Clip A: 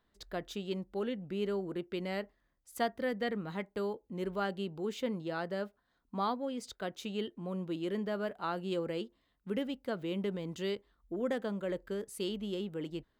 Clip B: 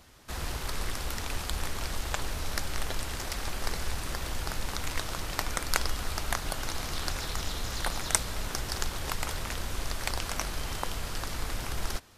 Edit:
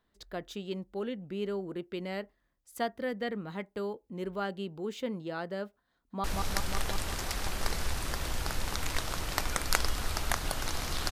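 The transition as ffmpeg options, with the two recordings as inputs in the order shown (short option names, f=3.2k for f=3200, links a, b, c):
-filter_complex "[0:a]apad=whole_dur=11.11,atrim=end=11.11,atrim=end=6.242[a];[1:a]atrim=start=2.248:end=7.12[b];[a][b]acrossfade=d=0.004:c1=hsin:c2=hsin,asplit=2[c][d];[d]afade=t=in:st=5.92:d=0.01,afade=t=out:st=6.24:d=0.01,aecho=0:1:180|360|540|720|900|1080|1260|1440|1620|1800|1980|2160:0.794328|0.595746|0.44681|0.335107|0.25133|0.188498|0.141373|0.10603|0.0795225|0.0596419|0.0447314|0.0335486[e];[c][e]amix=inputs=2:normalize=0"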